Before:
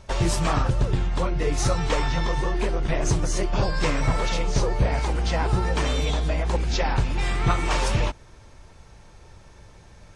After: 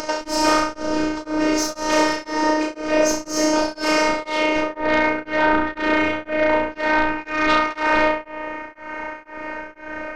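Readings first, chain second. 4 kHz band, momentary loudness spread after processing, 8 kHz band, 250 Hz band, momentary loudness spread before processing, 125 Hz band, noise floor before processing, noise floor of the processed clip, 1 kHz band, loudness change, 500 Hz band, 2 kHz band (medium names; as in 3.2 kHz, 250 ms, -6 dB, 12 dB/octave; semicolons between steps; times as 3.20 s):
+4.5 dB, 13 LU, +4.5 dB, +8.5 dB, 2 LU, -18.5 dB, -49 dBFS, -43 dBFS, +8.5 dB, +5.0 dB, +8.0 dB, +10.5 dB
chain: flutter echo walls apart 5.8 m, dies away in 1 s; low-pass sweep 5.4 kHz -> 2.1 kHz, 4.03–4.75 s; high-pass 120 Hz 24 dB/octave; upward compressor, threshold -24 dBFS; peaking EQ 3.6 kHz -12 dB 0.29 oct; sine folder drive 8 dB, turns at -6.5 dBFS; peaking EQ 930 Hz +3 dB 1.6 oct; robot voice 308 Hz; small resonant body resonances 470/1400 Hz, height 12 dB, ringing for 45 ms; tremolo of two beating tones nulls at 2 Hz; trim -5 dB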